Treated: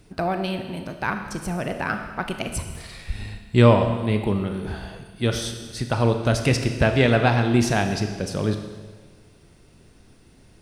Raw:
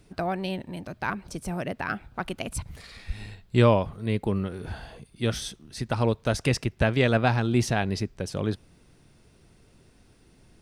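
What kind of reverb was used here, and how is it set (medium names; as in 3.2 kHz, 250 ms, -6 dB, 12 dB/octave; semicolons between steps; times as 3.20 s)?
Schroeder reverb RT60 1.5 s, combs from 26 ms, DRR 6 dB; trim +3.5 dB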